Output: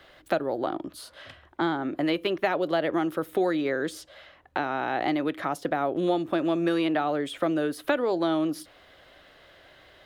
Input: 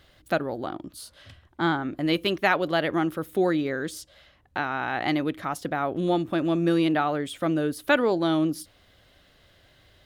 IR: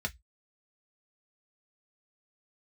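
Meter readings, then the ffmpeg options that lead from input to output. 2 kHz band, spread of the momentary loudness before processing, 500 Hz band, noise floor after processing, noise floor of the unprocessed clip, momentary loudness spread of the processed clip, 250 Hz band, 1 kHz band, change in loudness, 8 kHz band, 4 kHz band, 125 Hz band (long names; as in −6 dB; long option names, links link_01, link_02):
−4.0 dB, 13 LU, 0.0 dB, −56 dBFS, −60 dBFS, 10 LU, −1.5 dB, −1.0 dB, −1.5 dB, −4.0 dB, −3.5 dB, −6.5 dB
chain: -filter_complex "[0:a]bass=frequency=250:gain=-12,treble=frequency=4000:gain=-9,acrossover=split=120|640|3500[link_01][link_02][link_03][link_04];[link_01]acompressor=threshold=-60dB:ratio=4[link_05];[link_02]acompressor=threshold=-33dB:ratio=4[link_06];[link_03]acompressor=threshold=-41dB:ratio=4[link_07];[link_04]acompressor=threshold=-48dB:ratio=4[link_08];[link_05][link_06][link_07][link_08]amix=inputs=4:normalize=0,asplit=2[link_09][link_10];[1:a]atrim=start_sample=2205[link_11];[link_10][link_11]afir=irnorm=-1:irlink=0,volume=-19.5dB[link_12];[link_09][link_12]amix=inputs=2:normalize=0,volume=7.5dB"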